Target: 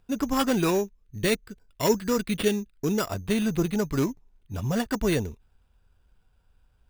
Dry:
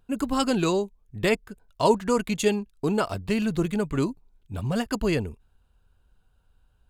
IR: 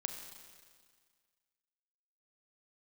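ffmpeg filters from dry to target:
-filter_complex "[0:a]acrusher=samples=7:mix=1:aa=0.000001,asettb=1/sr,asplit=3[a][b][c];[a]atrim=end=0.844[d];[b]atrim=start=0.84:end=3.07,asetpts=PTS-STARTPTS,afade=t=in:d=0.004:c=qsin,afade=t=out:st=2.226:d=0.004:c=qsin,equalizer=f=810:t=o:w=0.97:g=-8.5[e];[c]atrim=start=3.066[f];[d][e]acrossfade=d=0.004:c1=hsin:c2=qsin[g];[g][f]acrossfade=d=0.004:c1=qsin:c2=hsin"

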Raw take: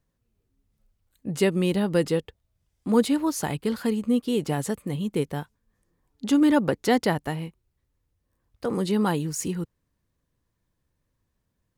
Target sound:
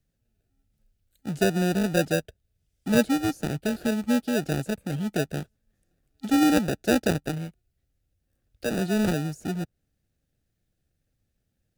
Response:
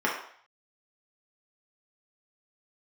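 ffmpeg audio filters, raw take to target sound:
-filter_complex "[0:a]acrossover=split=260|1600[a][b][c];[b]acrusher=samples=41:mix=1:aa=0.000001[d];[c]acompressor=threshold=-50dB:ratio=6[e];[a][d][e]amix=inputs=3:normalize=0"

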